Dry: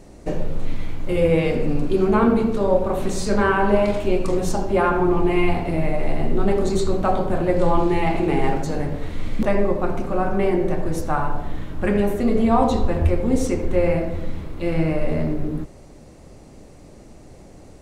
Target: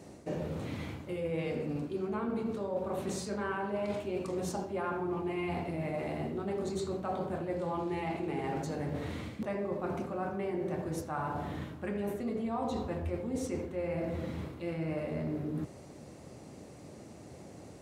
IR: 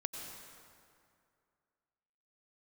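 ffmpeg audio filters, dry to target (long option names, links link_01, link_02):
-af "highpass=frequency=84:width=0.5412,highpass=frequency=84:width=1.3066,areverse,acompressor=threshold=-29dB:ratio=6,areverse,volume=-3.5dB"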